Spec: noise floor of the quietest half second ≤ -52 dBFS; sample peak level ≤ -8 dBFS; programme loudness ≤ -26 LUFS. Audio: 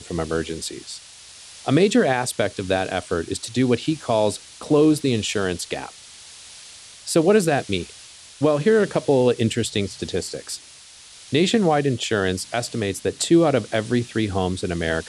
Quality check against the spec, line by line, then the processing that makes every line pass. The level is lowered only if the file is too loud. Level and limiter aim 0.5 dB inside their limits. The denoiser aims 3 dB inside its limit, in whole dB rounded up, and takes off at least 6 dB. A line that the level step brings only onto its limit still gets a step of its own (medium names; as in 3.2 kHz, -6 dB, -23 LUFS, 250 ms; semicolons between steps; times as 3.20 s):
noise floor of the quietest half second -45 dBFS: fail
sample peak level -5.5 dBFS: fail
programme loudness -21.5 LUFS: fail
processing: noise reduction 6 dB, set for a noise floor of -45 dBFS; trim -5 dB